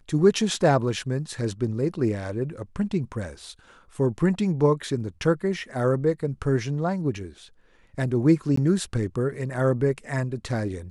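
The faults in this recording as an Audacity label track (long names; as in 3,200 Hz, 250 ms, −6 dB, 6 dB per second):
8.560000	8.570000	drop-out 14 ms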